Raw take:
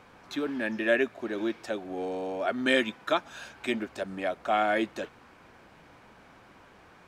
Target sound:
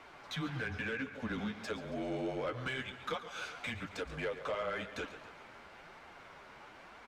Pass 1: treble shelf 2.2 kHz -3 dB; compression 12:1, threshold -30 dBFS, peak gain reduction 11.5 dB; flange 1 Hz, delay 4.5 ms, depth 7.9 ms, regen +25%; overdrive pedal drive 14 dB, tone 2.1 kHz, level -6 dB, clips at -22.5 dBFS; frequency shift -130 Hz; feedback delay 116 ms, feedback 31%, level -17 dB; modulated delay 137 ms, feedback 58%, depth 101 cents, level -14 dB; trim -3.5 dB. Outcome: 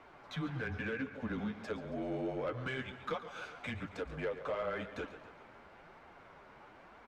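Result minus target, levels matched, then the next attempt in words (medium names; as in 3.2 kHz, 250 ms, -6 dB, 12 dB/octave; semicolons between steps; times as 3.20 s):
4 kHz band -5.0 dB
treble shelf 2.2 kHz +8.5 dB; compression 12:1, threshold -30 dBFS, peak gain reduction 14 dB; flange 1 Hz, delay 4.5 ms, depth 7.9 ms, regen +25%; overdrive pedal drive 14 dB, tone 2.1 kHz, level -6 dB, clips at -22.5 dBFS; frequency shift -130 Hz; feedback delay 116 ms, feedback 31%, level -17 dB; modulated delay 137 ms, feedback 58%, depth 101 cents, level -14 dB; trim -3.5 dB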